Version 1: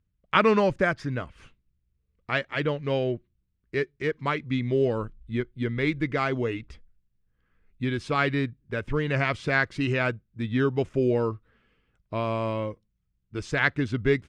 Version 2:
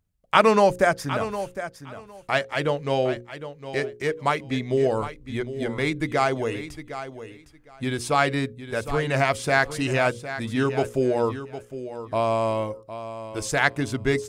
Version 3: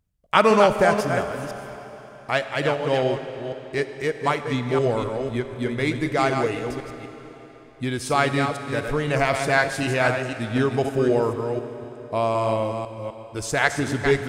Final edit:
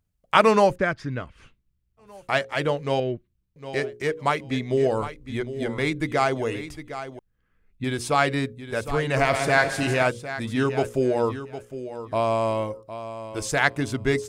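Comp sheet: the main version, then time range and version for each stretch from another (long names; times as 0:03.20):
2
0:00.72–0:02.05: punch in from 1, crossfade 0.16 s
0:03.00–0:03.56: punch in from 1
0:07.19–0:07.84: punch in from 1
0:09.17–0:10.03: punch in from 3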